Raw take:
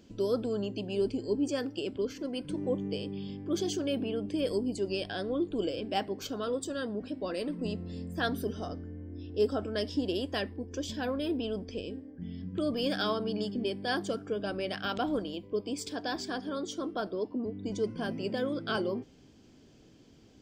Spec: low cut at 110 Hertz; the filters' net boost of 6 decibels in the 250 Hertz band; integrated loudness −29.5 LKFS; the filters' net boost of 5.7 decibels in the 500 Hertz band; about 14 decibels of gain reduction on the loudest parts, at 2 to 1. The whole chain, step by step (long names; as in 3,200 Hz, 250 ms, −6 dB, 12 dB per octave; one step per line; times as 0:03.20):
high-pass filter 110 Hz
parametric band 250 Hz +6 dB
parametric band 500 Hz +5 dB
downward compressor 2 to 1, threshold −45 dBFS
level +10.5 dB